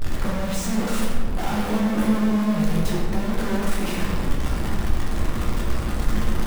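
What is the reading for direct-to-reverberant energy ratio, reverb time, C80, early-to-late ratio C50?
−4.0 dB, 1.8 s, 2.5 dB, 0.5 dB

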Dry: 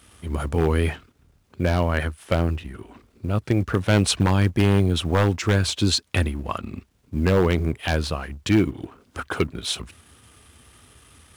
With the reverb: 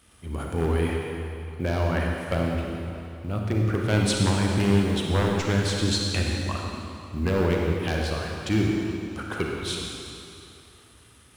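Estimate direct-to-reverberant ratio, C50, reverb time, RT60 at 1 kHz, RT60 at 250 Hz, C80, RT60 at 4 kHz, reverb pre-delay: −1.0 dB, 0.0 dB, 2.8 s, 2.8 s, 2.5 s, 1.5 dB, 2.4 s, 33 ms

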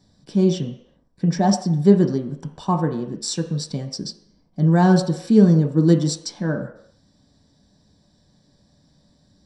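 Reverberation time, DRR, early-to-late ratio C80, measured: non-exponential decay, 2.5 dB, 11.5 dB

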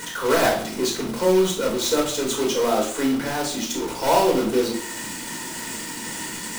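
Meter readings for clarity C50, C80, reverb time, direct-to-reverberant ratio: 7.0 dB, 10.5 dB, 0.55 s, −2.5 dB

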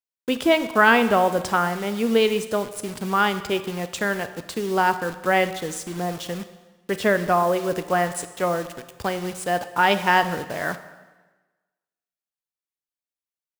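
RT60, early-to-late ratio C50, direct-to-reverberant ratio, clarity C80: 1.2 s, 12.5 dB, 10.5 dB, 14.0 dB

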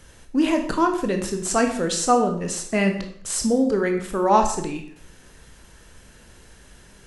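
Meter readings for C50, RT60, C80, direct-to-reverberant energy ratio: 7.5 dB, 0.60 s, 11.0 dB, 4.0 dB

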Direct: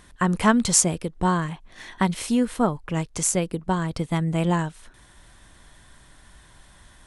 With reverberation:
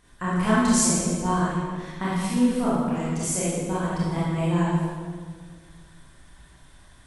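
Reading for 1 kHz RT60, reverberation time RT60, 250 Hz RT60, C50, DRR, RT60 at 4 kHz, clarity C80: 1.6 s, 1.7 s, 2.2 s, −3.5 dB, −9.0 dB, 1.3 s, −0.5 dB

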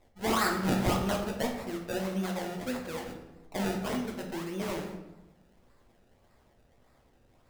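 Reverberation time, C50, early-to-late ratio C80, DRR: 0.95 s, 5.5 dB, 8.0 dB, 0.0 dB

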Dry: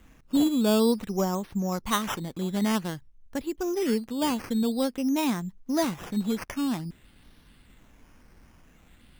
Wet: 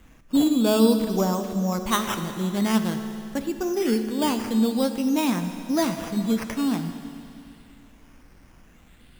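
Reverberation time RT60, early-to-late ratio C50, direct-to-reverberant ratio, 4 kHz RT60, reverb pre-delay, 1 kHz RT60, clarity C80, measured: 2.6 s, 8.0 dB, 7.0 dB, 2.6 s, 14 ms, 2.6 s, 9.0 dB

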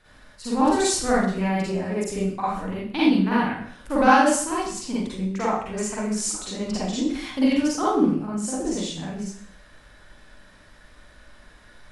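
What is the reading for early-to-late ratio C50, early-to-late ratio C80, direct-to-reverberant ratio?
−4.0 dB, 2.5 dB, −9.0 dB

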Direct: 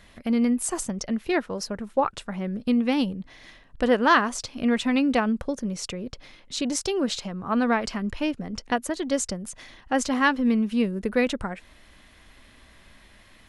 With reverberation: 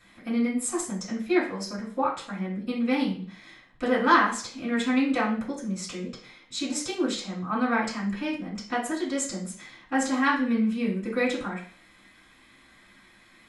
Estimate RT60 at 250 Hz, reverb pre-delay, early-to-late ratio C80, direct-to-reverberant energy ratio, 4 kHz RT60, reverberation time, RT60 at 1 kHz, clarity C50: 0.45 s, 3 ms, 11.0 dB, −9.5 dB, 0.45 s, 0.45 s, 0.45 s, 6.5 dB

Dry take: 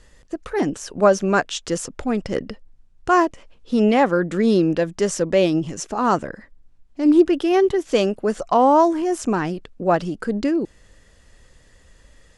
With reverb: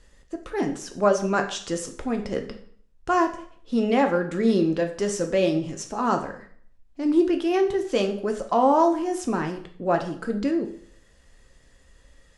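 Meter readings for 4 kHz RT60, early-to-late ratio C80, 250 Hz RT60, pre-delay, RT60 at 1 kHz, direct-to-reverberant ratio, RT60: 0.50 s, 14.0 dB, 0.60 s, 3 ms, 0.55 s, 4.5 dB, 0.55 s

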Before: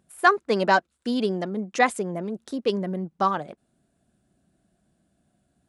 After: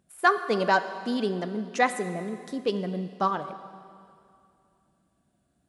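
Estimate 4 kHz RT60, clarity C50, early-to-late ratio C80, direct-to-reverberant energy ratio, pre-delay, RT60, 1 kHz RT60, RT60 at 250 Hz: 2.3 s, 11.5 dB, 12.0 dB, 10.5 dB, 7 ms, 2.5 s, 2.4 s, 2.4 s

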